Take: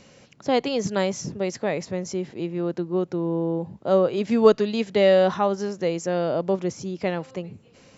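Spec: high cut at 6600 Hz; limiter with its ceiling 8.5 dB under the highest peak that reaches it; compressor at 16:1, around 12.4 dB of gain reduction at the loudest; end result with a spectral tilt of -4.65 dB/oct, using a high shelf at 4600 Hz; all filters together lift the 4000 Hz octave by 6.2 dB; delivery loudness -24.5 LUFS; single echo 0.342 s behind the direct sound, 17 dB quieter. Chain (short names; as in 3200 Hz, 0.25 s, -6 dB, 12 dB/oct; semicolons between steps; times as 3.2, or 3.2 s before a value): LPF 6600 Hz; bell 4000 Hz +6 dB; high shelf 4600 Hz +5.5 dB; compressor 16:1, threshold -21 dBFS; limiter -20.5 dBFS; echo 0.342 s -17 dB; gain +6.5 dB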